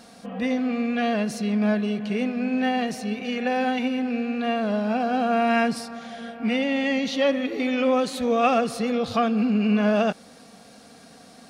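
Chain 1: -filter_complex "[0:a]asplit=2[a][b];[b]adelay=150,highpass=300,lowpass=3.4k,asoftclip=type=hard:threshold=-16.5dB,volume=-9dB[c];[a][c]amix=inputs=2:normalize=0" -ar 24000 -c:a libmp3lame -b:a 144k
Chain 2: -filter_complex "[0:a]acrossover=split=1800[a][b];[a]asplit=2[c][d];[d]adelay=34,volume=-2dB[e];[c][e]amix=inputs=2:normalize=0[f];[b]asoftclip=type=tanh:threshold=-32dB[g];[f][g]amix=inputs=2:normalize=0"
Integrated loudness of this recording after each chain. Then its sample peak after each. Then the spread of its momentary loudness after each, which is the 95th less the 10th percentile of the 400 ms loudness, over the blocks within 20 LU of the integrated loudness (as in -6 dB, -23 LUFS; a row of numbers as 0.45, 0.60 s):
-24.0, -21.5 LUFS; -9.0, -7.0 dBFS; 7, 7 LU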